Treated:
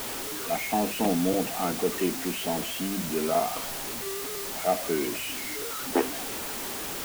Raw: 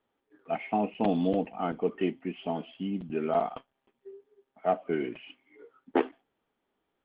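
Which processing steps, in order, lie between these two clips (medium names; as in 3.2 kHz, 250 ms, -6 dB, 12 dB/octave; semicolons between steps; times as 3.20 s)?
jump at every zero crossing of -32.5 dBFS; hum notches 50/100/150/200 Hz; word length cut 6-bit, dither triangular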